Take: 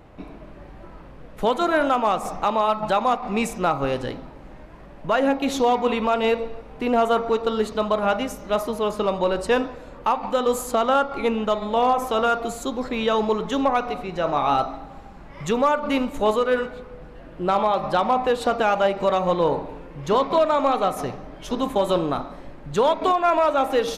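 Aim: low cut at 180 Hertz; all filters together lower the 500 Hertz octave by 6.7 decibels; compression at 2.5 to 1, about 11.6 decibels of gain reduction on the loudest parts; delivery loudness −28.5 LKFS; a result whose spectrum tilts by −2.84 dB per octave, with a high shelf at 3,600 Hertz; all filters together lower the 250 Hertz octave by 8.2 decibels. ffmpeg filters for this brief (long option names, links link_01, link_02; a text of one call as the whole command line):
ffmpeg -i in.wav -af "highpass=180,equalizer=frequency=250:width_type=o:gain=-6.5,equalizer=frequency=500:width_type=o:gain=-7,highshelf=frequency=3600:gain=5,acompressor=threshold=-36dB:ratio=2.5,volume=7dB" out.wav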